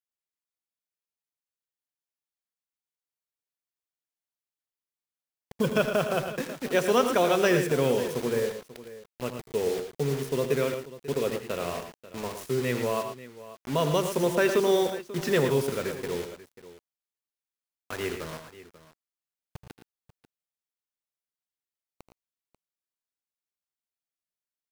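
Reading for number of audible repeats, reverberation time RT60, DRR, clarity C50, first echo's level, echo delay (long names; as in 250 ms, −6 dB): 3, no reverb audible, no reverb audible, no reverb audible, −13.0 dB, 80 ms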